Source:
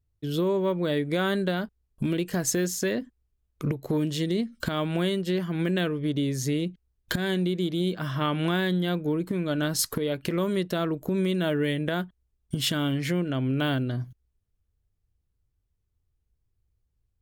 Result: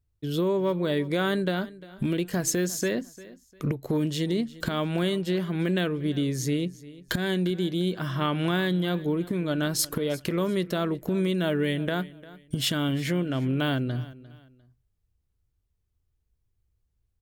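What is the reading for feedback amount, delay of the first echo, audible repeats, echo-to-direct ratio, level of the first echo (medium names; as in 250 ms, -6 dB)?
29%, 350 ms, 2, -18.5 dB, -19.0 dB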